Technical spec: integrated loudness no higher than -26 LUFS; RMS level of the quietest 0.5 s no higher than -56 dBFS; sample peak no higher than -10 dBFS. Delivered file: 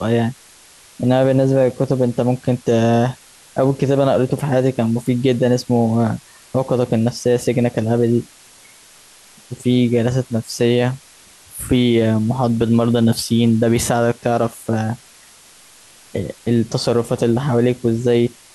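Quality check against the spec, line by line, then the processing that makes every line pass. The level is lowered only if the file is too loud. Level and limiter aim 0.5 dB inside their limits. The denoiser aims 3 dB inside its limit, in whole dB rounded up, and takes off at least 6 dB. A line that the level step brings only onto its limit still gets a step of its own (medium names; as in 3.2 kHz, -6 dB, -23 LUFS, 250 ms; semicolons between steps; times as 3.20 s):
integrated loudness -17.5 LUFS: fail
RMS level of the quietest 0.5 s -46 dBFS: fail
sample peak -5.5 dBFS: fail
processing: noise reduction 6 dB, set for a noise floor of -46 dBFS; trim -9 dB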